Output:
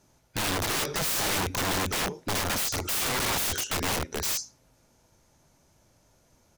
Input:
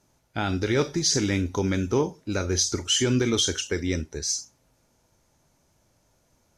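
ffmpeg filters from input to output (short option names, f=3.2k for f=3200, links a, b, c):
-filter_complex "[0:a]asplit=2[a][b];[b]adelay=110,highpass=300,lowpass=3.4k,asoftclip=type=hard:threshold=-17.5dB,volume=-19dB[c];[a][c]amix=inputs=2:normalize=0,aeval=exprs='(mod(18.8*val(0)+1,2)-1)/18.8':c=same,volume=2.5dB"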